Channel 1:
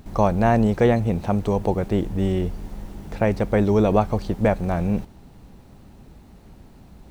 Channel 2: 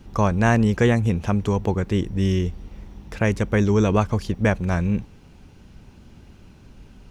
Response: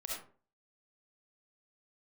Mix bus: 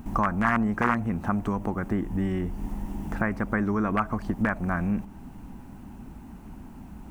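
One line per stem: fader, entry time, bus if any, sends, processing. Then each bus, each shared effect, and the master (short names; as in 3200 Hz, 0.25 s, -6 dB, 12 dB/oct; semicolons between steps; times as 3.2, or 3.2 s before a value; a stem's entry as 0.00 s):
+1.5 dB, 0.00 s, send -15 dB, band shelf 1600 Hz -9.5 dB 1.2 oct; compressor 5:1, threshold -29 dBFS, peak gain reduction 14.5 dB
-3.0 dB, 0.00 s, no send, wrapped overs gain 9 dB; band-pass 1200 Hz, Q 2.1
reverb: on, RT60 0.40 s, pre-delay 25 ms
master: graphic EQ 125/250/500/1000/2000/4000 Hz -3/+8/-10/+6/+8/-12 dB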